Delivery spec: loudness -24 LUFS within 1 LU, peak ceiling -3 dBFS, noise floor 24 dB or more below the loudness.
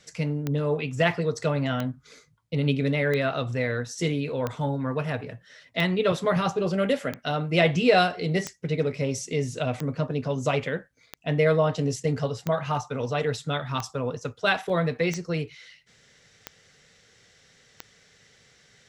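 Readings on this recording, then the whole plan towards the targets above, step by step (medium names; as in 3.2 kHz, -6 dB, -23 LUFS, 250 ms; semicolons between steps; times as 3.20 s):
clicks found 14; loudness -26.5 LUFS; peak level -7.5 dBFS; loudness target -24.0 LUFS
-> de-click; trim +2.5 dB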